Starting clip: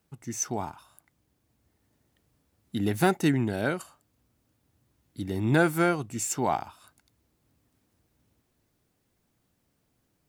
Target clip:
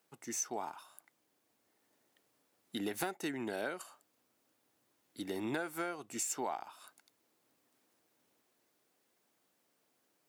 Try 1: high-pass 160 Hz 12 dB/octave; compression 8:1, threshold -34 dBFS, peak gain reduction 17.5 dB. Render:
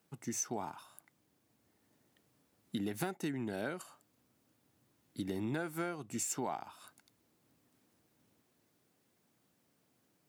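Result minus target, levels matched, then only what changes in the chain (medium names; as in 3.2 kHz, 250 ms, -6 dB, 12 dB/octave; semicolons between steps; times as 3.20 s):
125 Hz band +8.5 dB
change: high-pass 380 Hz 12 dB/octave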